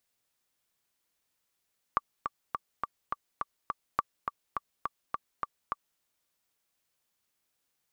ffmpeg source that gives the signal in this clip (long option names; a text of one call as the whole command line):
ffmpeg -f lavfi -i "aevalsrc='pow(10,(-12-6*gte(mod(t,7*60/208),60/208))/20)*sin(2*PI*1160*mod(t,60/208))*exp(-6.91*mod(t,60/208)/0.03)':duration=4.03:sample_rate=44100" out.wav